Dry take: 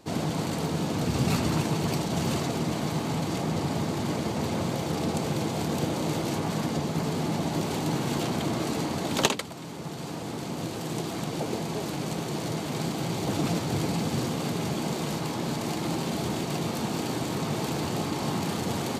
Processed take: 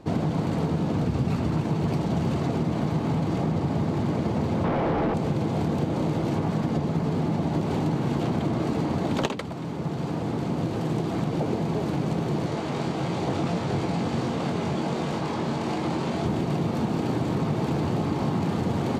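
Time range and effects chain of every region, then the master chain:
4.64–5.14 LPF 2900 Hz + overdrive pedal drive 36 dB, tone 1400 Hz, clips at -17.5 dBFS
12.46–16.26 LPF 9700 Hz + low shelf 360 Hz -8 dB + doubler 22 ms -5 dB
whole clip: LPF 1500 Hz 6 dB/oct; low shelf 190 Hz +5.5 dB; compressor, threshold -27 dBFS; gain +5.5 dB

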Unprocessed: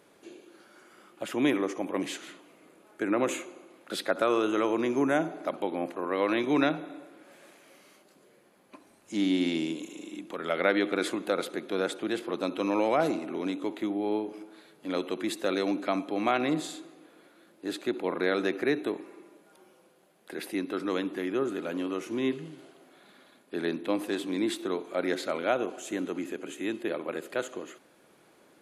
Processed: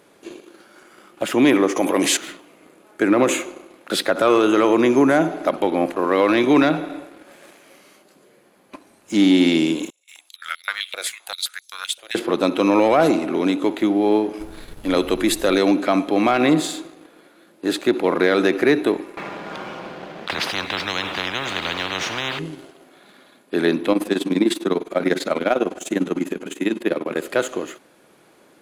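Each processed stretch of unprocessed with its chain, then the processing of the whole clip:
1.76–2.17 tone controls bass -6 dB, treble +8 dB + fast leveller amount 50%
9.9–12.15 gate with hold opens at -31 dBFS, closes at -36 dBFS + differentiator + stepped high-pass 7.7 Hz 570–5600 Hz
14.39–15.56 high shelf 9500 Hz +8.5 dB + added noise brown -49 dBFS
19.17–22.39 HPF 46 Hz + air absorption 230 m + spectral compressor 10:1
23.92–27.16 resonant low shelf 140 Hz -7.5 dB, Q 3 + AM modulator 20 Hz, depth 70%
whole clip: sample leveller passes 1; maximiser +14.5 dB; gain -6 dB

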